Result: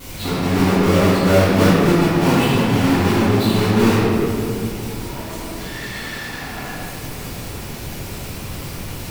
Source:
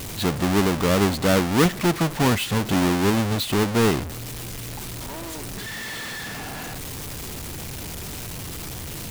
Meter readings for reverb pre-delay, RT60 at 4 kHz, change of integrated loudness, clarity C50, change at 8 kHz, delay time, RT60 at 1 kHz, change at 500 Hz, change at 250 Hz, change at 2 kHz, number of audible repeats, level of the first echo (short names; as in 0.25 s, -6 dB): 4 ms, 1.4 s, +7.0 dB, -3.5 dB, -0.5 dB, none, 2.5 s, +6.0 dB, +6.0 dB, +4.0 dB, none, none